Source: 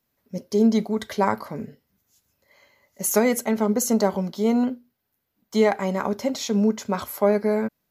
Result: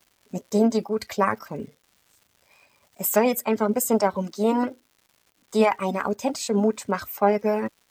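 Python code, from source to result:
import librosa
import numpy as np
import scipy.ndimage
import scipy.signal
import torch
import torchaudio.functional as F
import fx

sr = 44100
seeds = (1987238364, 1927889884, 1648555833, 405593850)

y = fx.dereverb_blind(x, sr, rt60_s=0.51)
y = fx.formant_shift(y, sr, semitones=3)
y = fx.dmg_crackle(y, sr, seeds[0], per_s=270.0, level_db=-46.0)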